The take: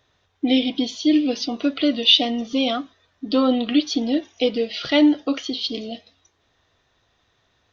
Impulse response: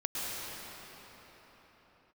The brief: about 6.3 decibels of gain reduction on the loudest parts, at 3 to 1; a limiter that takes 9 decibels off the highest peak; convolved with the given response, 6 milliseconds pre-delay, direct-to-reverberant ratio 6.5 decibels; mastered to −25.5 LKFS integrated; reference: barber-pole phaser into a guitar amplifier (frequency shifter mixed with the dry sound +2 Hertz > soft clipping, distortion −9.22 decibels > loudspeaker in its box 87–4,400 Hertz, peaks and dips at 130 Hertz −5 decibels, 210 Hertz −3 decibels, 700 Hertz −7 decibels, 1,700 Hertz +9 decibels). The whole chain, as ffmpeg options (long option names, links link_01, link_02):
-filter_complex "[0:a]acompressor=threshold=-19dB:ratio=3,alimiter=limit=-17.5dB:level=0:latency=1,asplit=2[link_01][link_02];[1:a]atrim=start_sample=2205,adelay=6[link_03];[link_02][link_03]afir=irnorm=-1:irlink=0,volume=-13dB[link_04];[link_01][link_04]amix=inputs=2:normalize=0,asplit=2[link_05][link_06];[link_06]afreqshift=2[link_07];[link_05][link_07]amix=inputs=2:normalize=1,asoftclip=threshold=-29.5dB,highpass=87,equalizer=frequency=130:width_type=q:width=4:gain=-5,equalizer=frequency=210:width_type=q:width=4:gain=-3,equalizer=frequency=700:width_type=q:width=4:gain=-7,equalizer=frequency=1700:width_type=q:width=4:gain=9,lowpass=frequency=4400:width=0.5412,lowpass=frequency=4400:width=1.3066,volume=9.5dB"